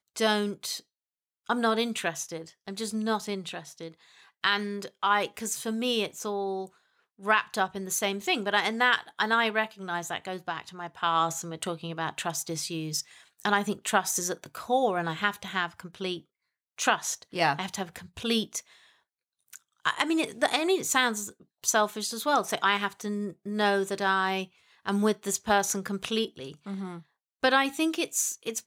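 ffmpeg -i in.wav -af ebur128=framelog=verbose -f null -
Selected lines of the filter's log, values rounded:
Integrated loudness:
  I:         -28.4 LUFS
  Threshold: -39.0 LUFS
Loudness range:
  LRA:         4.4 LU
  Threshold: -49.0 LUFS
  LRA low:   -31.4 LUFS
  LRA high:  -27.0 LUFS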